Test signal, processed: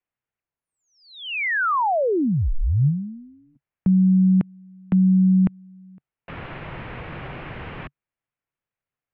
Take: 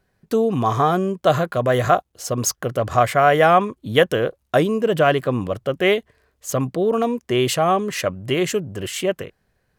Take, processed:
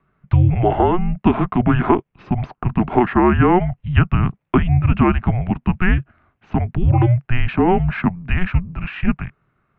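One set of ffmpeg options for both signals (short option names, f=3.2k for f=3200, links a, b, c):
-filter_complex "[0:a]acrossover=split=280|1800[a][b][c];[a]acompressor=threshold=-29dB:ratio=4[d];[b]acompressor=threshold=-17dB:ratio=4[e];[c]acompressor=threshold=-31dB:ratio=4[f];[d][e][f]amix=inputs=3:normalize=0,equalizer=f=220:w=4.7:g=7.5,highpass=f=190:t=q:w=0.5412,highpass=f=190:t=q:w=1.307,lowpass=f=3k:t=q:w=0.5176,lowpass=f=3k:t=q:w=0.7071,lowpass=f=3k:t=q:w=1.932,afreqshift=-360,volume=5.5dB"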